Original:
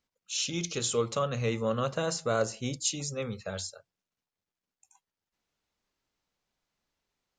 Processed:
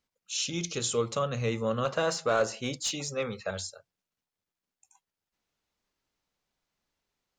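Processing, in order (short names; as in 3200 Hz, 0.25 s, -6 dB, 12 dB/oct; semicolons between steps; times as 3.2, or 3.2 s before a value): 1.85–3.51 overdrive pedal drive 13 dB, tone 2700 Hz, clips at -15 dBFS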